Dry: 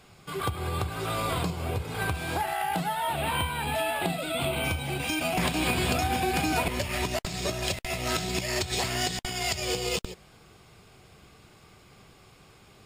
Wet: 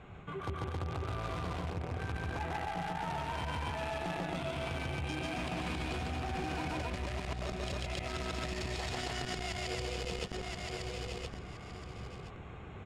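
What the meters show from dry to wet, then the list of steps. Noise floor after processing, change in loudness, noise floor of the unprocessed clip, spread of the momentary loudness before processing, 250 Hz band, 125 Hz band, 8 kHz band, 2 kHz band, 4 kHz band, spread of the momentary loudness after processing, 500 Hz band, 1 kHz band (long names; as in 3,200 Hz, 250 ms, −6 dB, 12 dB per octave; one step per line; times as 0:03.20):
−47 dBFS, −9.5 dB, −56 dBFS, 5 LU, −7.5 dB, −5.5 dB, −14.5 dB, −9.0 dB, −10.5 dB, 8 LU, −8.0 dB, −8.5 dB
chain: adaptive Wiener filter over 9 samples
in parallel at −3.5 dB: bit reduction 4 bits
on the sum: parametric band 64 Hz +6 dB 1.6 octaves
loudspeakers that aren't time-aligned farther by 49 metres −1 dB, 93 metres −2 dB
brickwall limiter −15 dBFS, peak gain reduction 10 dB
high-frequency loss of the air 71 metres
repeating echo 1,022 ms, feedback 22%, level −14.5 dB
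reversed playback
downward compressor 6 to 1, threshold −37 dBFS, peak gain reduction 15.5 dB
reversed playback
saturating transformer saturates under 210 Hz
level +3 dB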